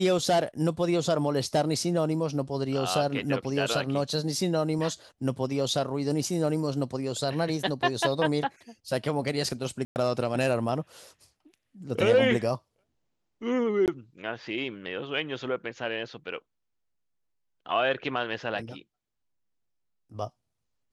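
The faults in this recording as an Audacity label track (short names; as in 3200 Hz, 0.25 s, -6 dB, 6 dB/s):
9.850000	9.960000	gap 0.109 s
13.860000	13.880000	gap 18 ms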